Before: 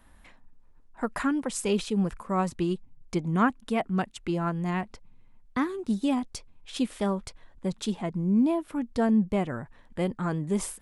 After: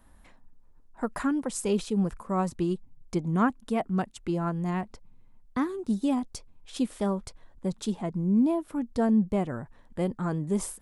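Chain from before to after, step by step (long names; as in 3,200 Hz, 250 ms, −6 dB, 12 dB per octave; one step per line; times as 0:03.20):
parametric band 2,500 Hz −6 dB 1.7 octaves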